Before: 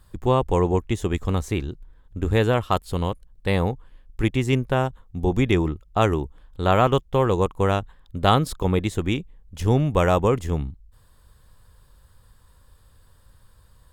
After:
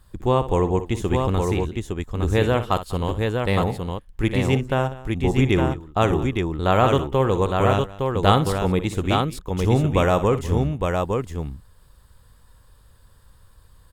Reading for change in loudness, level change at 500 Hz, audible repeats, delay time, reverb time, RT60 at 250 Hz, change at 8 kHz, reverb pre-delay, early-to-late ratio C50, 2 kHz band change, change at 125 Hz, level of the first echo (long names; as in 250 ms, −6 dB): +1.0 dB, +1.5 dB, 3, 60 ms, no reverb audible, no reverb audible, +1.5 dB, no reverb audible, no reverb audible, +1.5 dB, +1.5 dB, −12.5 dB